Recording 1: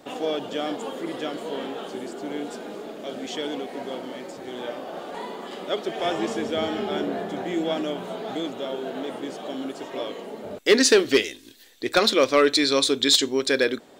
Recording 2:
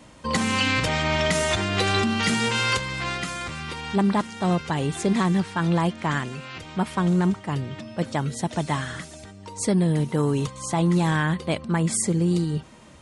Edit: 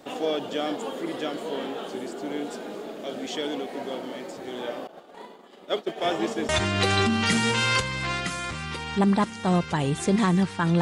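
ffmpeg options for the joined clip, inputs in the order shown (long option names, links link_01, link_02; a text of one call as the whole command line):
ffmpeg -i cue0.wav -i cue1.wav -filter_complex "[0:a]asettb=1/sr,asplit=3[link_01][link_02][link_03];[link_01]atrim=end=4.874[link_04];[link_02]atrim=start=4.87:end=6.49,asetpts=PTS-STARTPTS,afade=type=in:duration=0.004:curve=qsin,afade=type=out:start_time=1.616:duration=0.004:curve=qsin,agate=range=-33dB:threshold=-27dB:ratio=3:release=100:detection=peak[link_05];[link_03]atrim=start=6.486[link_06];[link_04][link_05]acrossfade=duration=0.004:curve1=hsin:curve2=qsin[link_07];[link_07][link_06]acrossfade=duration=0.004:curve1=qsin:curve2=hsin,apad=whole_dur=10.81,atrim=end=10.81,atrim=end=6.492[link_08];[1:a]atrim=start=1.458:end=5.78[link_09];[link_08][link_09]acrossfade=duration=0.004:curve1=hsin:curve2=hsin" out.wav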